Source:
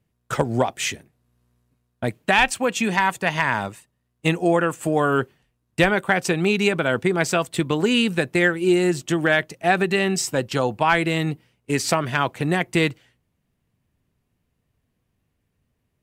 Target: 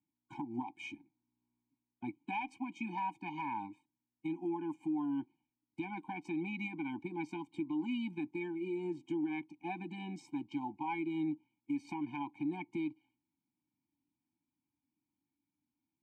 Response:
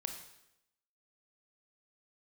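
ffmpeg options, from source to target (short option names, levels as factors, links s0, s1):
-filter_complex "[0:a]asplit=3[s0][s1][s2];[s0]bandpass=f=300:t=q:w=8,volume=1[s3];[s1]bandpass=f=870:t=q:w=8,volume=0.501[s4];[s2]bandpass=f=2240:t=q:w=8,volume=0.355[s5];[s3][s4][s5]amix=inputs=3:normalize=0,alimiter=level_in=1.33:limit=0.0631:level=0:latency=1:release=181,volume=0.75,afftfilt=real='re*eq(mod(floor(b*sr/1024/360),2),0)':imag='im*eq(mod(floor(b*sr/1024/360),2),0)':win_size=1024:overlap=0.75,volume=0.794"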